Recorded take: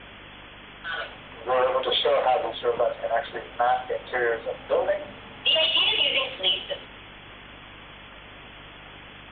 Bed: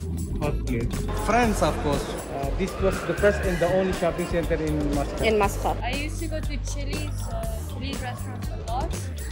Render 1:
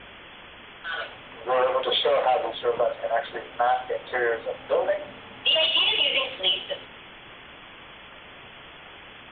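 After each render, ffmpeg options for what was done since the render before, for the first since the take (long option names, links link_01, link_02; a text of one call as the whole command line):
ffmpeg -i in.wav -af "bandreject=frequency=50:width_type=h:width=4,bandreject=frequency=100:width_type=h:width=4,bandreject=frequency=150:width_type=h:width=4,bandreject=frequency=200:width_type=h:width=4,bandreject=frequency=250:width_type=h:width=4,bandreject=frequency=300:width_type=h:width=4" out.wav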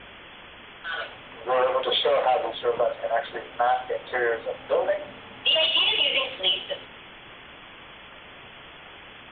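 ffmpeg -i in.wav -af anull out.wav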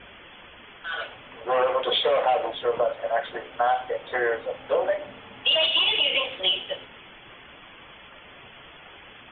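ffmpeg -i in.wav -af "afftdn=noise_reduction=6:noise_floor=-46" out.wav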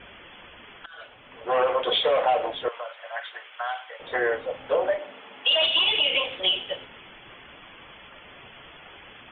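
ffmpeg -i in.wav -filter_complex "[0:a]asettb=1/sr,asplit=3[link_01][link_02][link_03];[link_01]atrim=end=2.684[link_04];[link_02]atrim=start=2.68:end=4,asetpts=PTS-STARTPTS,afade=type=in:duration=0.004:curve=qsin,afade=type=out:start_time=1.316:duration=0.004:curve=qsin,highpass=1300[link_05];[link_03]atrim=start=3.996[link_06];[link_04][link_05]acrossfade=duration=0.004:curve1=hsin:curve2=qsin[link_07];[link_07][link_06]acrossfade=duration=0.004:curve1=qsin:curve2=hsin,asettb=1/sr,asplit=3[link_08][link_09][link_10];[link_08]atrim=end=4.994[link_11];[link_09]atrim=start=4.99:end=5.62,asetpts=PTS-STARTPTS,afade=type=in:duration=0.004:curve=qsin,afade=type=out:start_time=0.626:duration=0.004:curve=qsin,highpass=300[link_12];[link_10]atrim=start=5.616[link_13];[link_11][link_12]acrossfade=duration=0.004:curve1=hsin:curve2=qsin[link_14];[link_14][link_13]acrossfade=duration=0.004:curve1=qsin:curve2=hsin,asplit=2[link_15][link_16];[link_15]atrim=end=0.86,asetpts=PTS-STARTPTS,afade=type=out:start_time=0.856:duration=0.004:curve=hsin:silence=0.1[link_17];[link_16]atrim=start=0.86,asetpts=PTS-STARTPTS,afade=type=in:duration=0.7:silence=0.1[link_18];[link_17][link_18]concat=n=2:v=0:a=1" out.wav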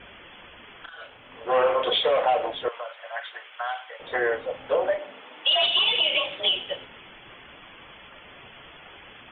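ffmpeg -i in.wav -filter_complex "[0:a]asettb=1/sr,asplit=3[link_01][link_02][link_03];[link_01]atrim=end=0.764[link_04];[link_02]atrim=start=0.76:end=1.89,asetpts=PTS-STARTPTS,afade=type=in:duration=0.004:curve=qsin,afade=type=out:start_time=1.126:duration=0.004:curve=qsin,asplit=2[link_05][link_06];[link_06]adelay=35,volume=-5.5dB[link_07];[link_05][link_07]amix=inputs=2:normalize=0,atrim=end_sample=49833[link_08];[link_03]atrim=start=1.886[link_09];[link_04][link_08]acrossfade=duration=0.004:curve1=hsin:curve2=qsin[link_10];[link_10][link_09]acrossfade=duration=0.004:curve1=qsin:curve2=hsin,asettb=1/sr,asplit=3[link_11][link_12][link_13];[link_11]atrim=end=5.254[link_14];[link_12]atrim=start=5.25:end=6.49,asetpts=PTS-STARTPTS,afade=type=in:duration=0.004:curve=qsin,afade=type=out:start_time=1.236:duration=0.004:curve=qsin,afreqshift=46[link_15];[link_13]atrim=start=6.486[link_16];[link_14][link_15]acrossfade=duration=0.004:curve1=hsin:curve2=qsin[link_17];[link_17][link_16]acrossfade=duration=0.004:curve1=qsin:curve2=hsin" out.wav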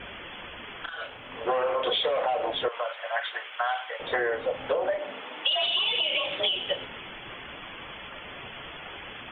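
ffmpeg -i in.wav -filter_complex "[0:a]asplit=2[link_01][link_02];[link_02]alimiter=limit=-19.5dB:level=0:latency=1:release=33,volume=-1dB[link_03];[link_01][link_03]amix=inputs=2:normalize=0,acompressor=threshold=-23dB:ratio=10" out.wav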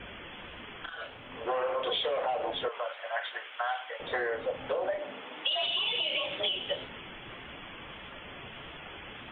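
ffmpeg -i in.wav -filter_complex "[0:a]acrossover=split=390[link_01][link_02];[link_01]asoftclip=type=tanh:threshold=-39dB[link_03];[link_02]flanger=delay=9.9:depth=4.9:regen=81:speed=1.6:shape=triangular[link_04];[link_03][link_04]amix=inputs=2:normalize=0" out.wav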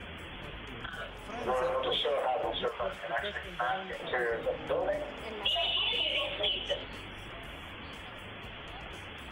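ffmpeg -i in.wav -i bed.wav -filter_complex "[1:a]volume=-21.5dB[link_01];[0:a][link_01]amix=inputs=2:normalize=0" out.wav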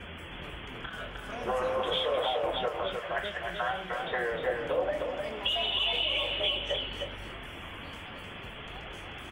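ffmpeg -i in.wav -filter_complex "[0:a]asplit=2[link_01][link_02];[link_02]adelay=23,volume=-11.5dB[link_03];[link_01][link_03]amix=inputs=2:normalize=0,aecho=1:1:307:0.596" out.wav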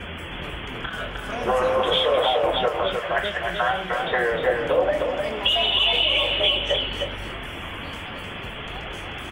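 ffmpeg -i in.wav -af "volume=9dB" out.wav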